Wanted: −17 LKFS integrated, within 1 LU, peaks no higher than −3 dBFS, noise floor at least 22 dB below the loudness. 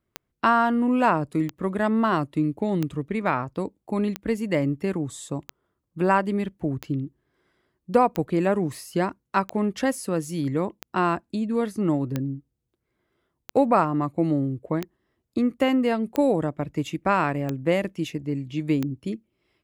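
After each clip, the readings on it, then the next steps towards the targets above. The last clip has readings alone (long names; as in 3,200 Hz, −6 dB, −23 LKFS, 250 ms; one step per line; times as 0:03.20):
number of clicks 15; integrated loudness −25.0 LKFS; sample peak −7.5 dBFS; target loudness −17.0 LKFS
→ click removal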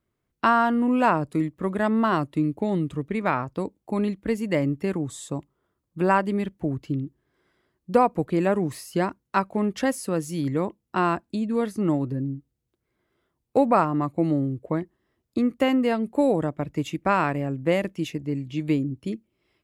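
number of clicks 0; integrated loudness −25.0 LKFS; sample peak −7.5 dBFS; target loudness −17.0 LKFS
→ level +8 dB
brickwall limiter −3 dBFS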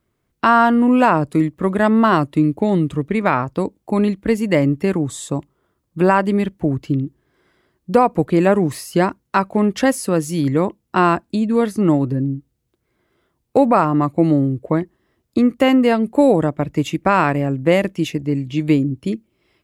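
integrated loudness −17.5 LKFS; sample peak −3.0 dBFS; background noise floor −71 dBFS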